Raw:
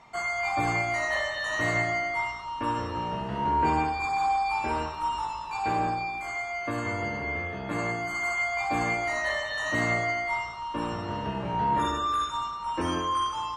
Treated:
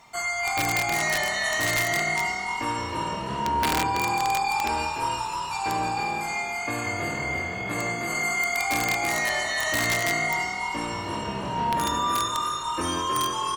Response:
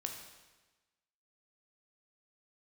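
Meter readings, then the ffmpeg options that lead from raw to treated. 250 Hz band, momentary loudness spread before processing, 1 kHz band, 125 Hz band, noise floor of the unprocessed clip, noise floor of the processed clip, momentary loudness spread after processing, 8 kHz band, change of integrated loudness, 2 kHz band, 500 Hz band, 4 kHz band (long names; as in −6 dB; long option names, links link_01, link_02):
+0.5 dB, 7 LU, +1.5 dB, 0.0 dB, −36 dBFS, −32 dBFS, 6 LU, +13.0 dB, +3.0 dB, +3.5 dB, +1.0 dB, +7.5 dB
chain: -filter_complex "[0:a]aemphasis=mode=production:type=75fm,asplit=6[link_01][link_02][link_03][link_04][link_05][link_06];[link_02]adelay=316,afreqshift=40,volume=-4dB[link_07];[link_03]adelay=632,afreqshift=80,volume=-12.9dB[link_08];[link_04]adelay=948,afreqshift=120,volume=-21.7dB[link_09];[link_05]adelay=1264,afreqshift=160,volume=-30.6dB[link_10];[link_06]adelay=1580,afreqshift=200,volume=-39.5dB[link_11];[link_01][link_07][link_08][link_09][link_10][link_11]amix=inputs=6:normalize=0,aeval=exprs='(mod(6.31*val(0)+1,2)-1)/6.31':channel_layout=same"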